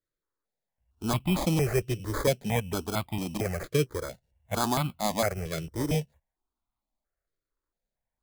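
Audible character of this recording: aliases and images of a low sample rate 2.8 kHz, jitter 0%; notches that jump at a steady rate 4.4 Hz 230–1700 Hz

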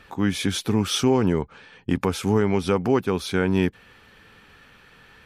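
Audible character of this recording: noise floor -53 dBFS; spectral tilt -5.5 dB/octave

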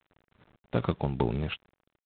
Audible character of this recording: a quantiser's noise floor 10-bit, dither none; tremolo saw down 2.5 Hz, depth 55%; G.726

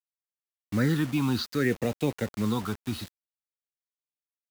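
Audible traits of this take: phasing stages 6, 0.63 Hz, lowest notch 520–1400 Hz; a quantiser's noise floor 8-bit, dither none

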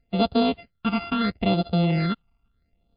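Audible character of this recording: a buzz of ramps at a fixed pitch in blocks of 64 samples; phasing stages 8, 0.75 Hz, lowest notch 520–2000 Hz; MP3

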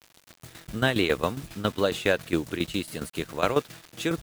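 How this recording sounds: a quantiser's noise floor 8-bit, dither none; tremolo saw down 7.3 Hz, depth 75%

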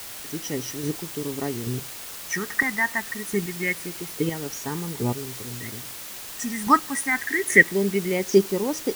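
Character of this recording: chopped level 1.2 Hz, depth 60%, duty 15%; phasing stages 4, 0.26 Hz, lowest notch 470–2100 Hz; a quantiser's noise floor 8-bit, dither triangular

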